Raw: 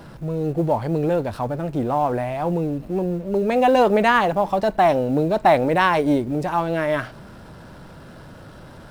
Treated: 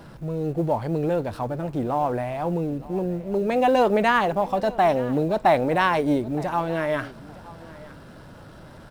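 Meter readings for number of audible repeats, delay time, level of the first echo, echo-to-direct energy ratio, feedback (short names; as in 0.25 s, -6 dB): 2, 0.916 s, -20.0 dB, -20.0 dB, 20%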